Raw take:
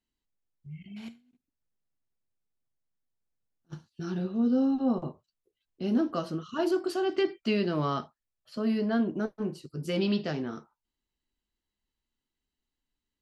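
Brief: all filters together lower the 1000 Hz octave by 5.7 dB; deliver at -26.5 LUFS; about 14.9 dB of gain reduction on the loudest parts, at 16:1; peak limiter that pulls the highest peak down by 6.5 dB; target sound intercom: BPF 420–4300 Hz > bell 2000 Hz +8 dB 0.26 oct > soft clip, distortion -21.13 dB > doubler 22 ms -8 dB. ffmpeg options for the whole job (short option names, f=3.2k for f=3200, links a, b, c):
-filter_complex "[0:a]equalizer=f=1k:t=o:g=-8,acompressor=threshold=-37dB:ratio=16,alimiter=level_in=10dB:limit=-24dB:level=0:latency=1,volume=-10dB,highpass=420,lowpass=4.3k,equalizer=f=2k:t=o:w=0.26:g=8,asoftclip=threshold=-38.5dB,asplit=2[a][b];[b]adelay=22,volume=-8dB[c];[a][c]amix=inputs=2:normalize=0,volume=23.5dB"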